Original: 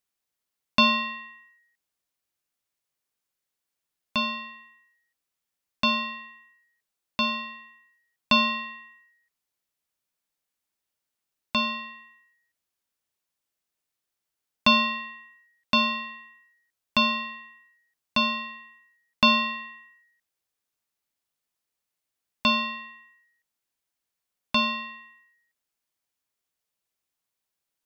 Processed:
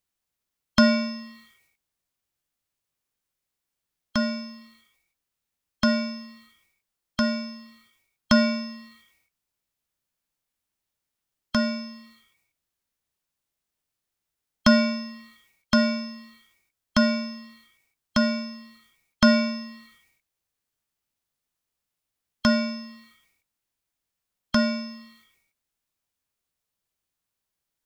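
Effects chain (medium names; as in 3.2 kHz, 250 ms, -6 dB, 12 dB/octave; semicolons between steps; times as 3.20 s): formant shift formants +3 st; bass shelf 170 Hz +9.5 dB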